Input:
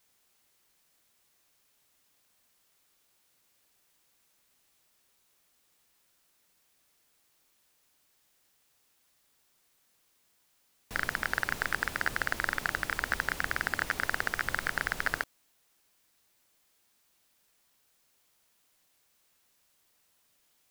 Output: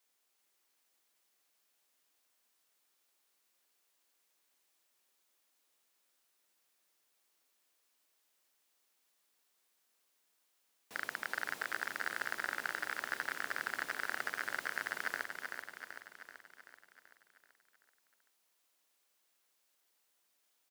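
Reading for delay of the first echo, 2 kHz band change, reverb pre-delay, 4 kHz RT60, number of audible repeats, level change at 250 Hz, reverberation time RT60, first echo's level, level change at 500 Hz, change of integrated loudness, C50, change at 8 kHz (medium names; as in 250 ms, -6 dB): 383 ms, -6.5 dB, no reverb, no reverb, 7, -10.5 dB, no reverb, -5.5 dB, -7.0 dB, -7.0 dB, no reverb, -6.5 dB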